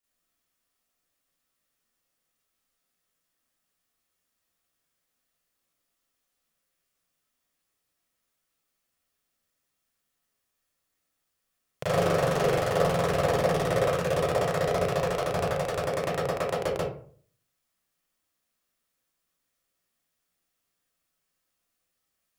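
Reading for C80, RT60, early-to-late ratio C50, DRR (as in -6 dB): 6.0 dB, 0.50 s, 0.0 dB, -10.5 dB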